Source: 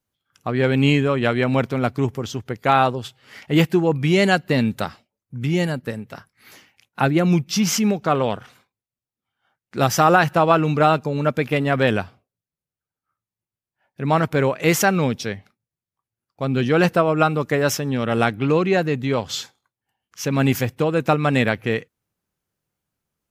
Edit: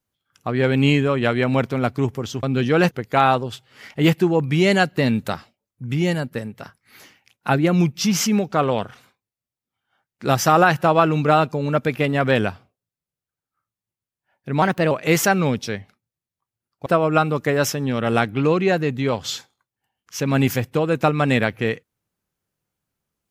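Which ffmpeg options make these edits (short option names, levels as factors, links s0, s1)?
-filter_complex "[0:a]asplit=6[s0][s1][s2][s3][s4][s5];[s0]atrim=end=2.432[s6];[s1]atrim=start=16.428:end=16.912[s7];[s2]atrim=start=2.428:end=14.144[s8];[s3]atrim=start=14.14:end=14.48,asetpts=PTS-STARTPTS,asetrate=51597,aresample=44100,atrim=end_sample=12815,asetpts=PTS-STARTPTS[s9];[s4]atrim=start=14.476:end=16.432[s10];[s5]atrim=start=16.908[s11];[s6][s7]acrossfade=d=0.004:c1=hsin:c2=hsin[s12];[s12][s8]acrossfade=d=0.004:c1=hsin:c2=hsin[s13];[s13][s9]acrossfade=d=0.004:c1=hsin:c2=hsin[s14];[s14][s10]acrossfade=d=0.004:c1=hsin:c2=hsin[s15];[s15][s11]acrossfade=d=0.004:c1=hsin:c2=hsin"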